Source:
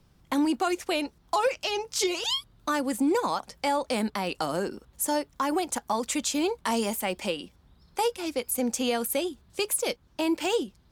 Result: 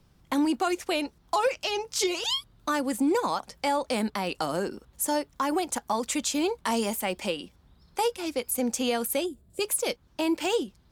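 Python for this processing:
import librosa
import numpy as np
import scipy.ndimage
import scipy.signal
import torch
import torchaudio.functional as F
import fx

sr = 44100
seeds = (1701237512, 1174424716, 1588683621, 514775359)

y = fx.spec_box(x, sr, start_s=9.26, length_s=0.35, low_hz=720.0, high_hz=6900.0, gain_db=-12)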